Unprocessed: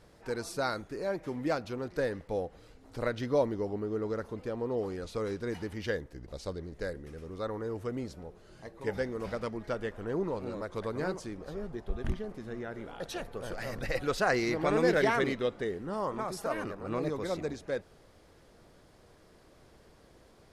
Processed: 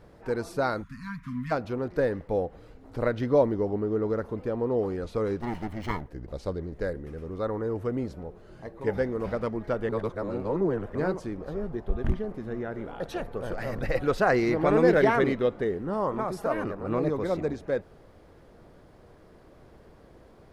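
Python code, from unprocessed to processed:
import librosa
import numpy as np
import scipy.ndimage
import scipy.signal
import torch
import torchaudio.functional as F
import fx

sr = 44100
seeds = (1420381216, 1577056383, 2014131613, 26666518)

y = fx.spec_erase(x, sr, start_s=0.83, length_s=0.68, low_hz=260.0, high_hz=960.0)
y = fx.lower_of_two(y, sr, delay_ms=0.96, at=(5.41, 6.08))
y = fx.edit(y, sr, fx.reverse_span(start_s=9.89, length_s=1.06), tone=tone)
y = fx.peak_eq(y, sr, hz=7300.0, db=-12.0, octaves=2.9)
y = y * librosa.db_to_amplitude(6.5)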